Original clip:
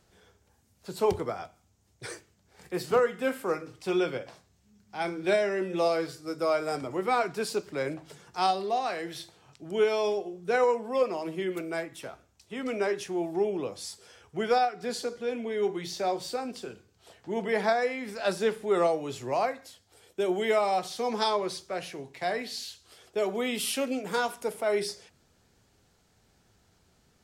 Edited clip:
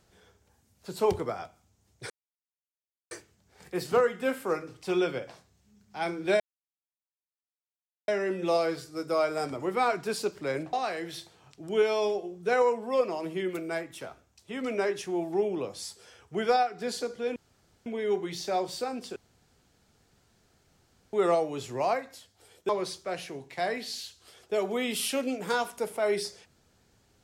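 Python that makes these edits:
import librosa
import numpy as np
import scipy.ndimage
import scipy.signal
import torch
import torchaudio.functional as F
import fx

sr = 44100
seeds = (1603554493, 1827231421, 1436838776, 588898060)

y = fx.edit(x, sr, fx.insert_silence(at_s=2.1, length_s=1.01),
    fx.insert_silence(at_s=5.39, length_s=1.68),
    fx.cut(start_s=8.04, length_s=0.71),
    fx.insert_room_tone(at_s=15.38, length_s=0.5),
    fx.room_tone_fill(start_s=16.68, length_s=1.97),
    fx.cut(start_s=20.21, length_s=1.12), tone=tone)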